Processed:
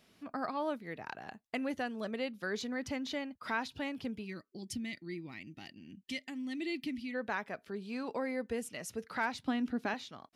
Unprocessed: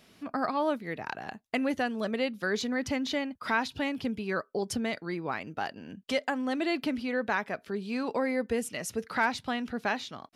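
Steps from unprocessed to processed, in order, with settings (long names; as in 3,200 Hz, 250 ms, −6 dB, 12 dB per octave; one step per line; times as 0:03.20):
0:04.25–0:07.15: gain on a spectral selection 370–1,800 Hz −16 dB
0:09.43–0:09.94: parametric band 280 Hz +13.5 dB 0.53 octaves
level −7 dB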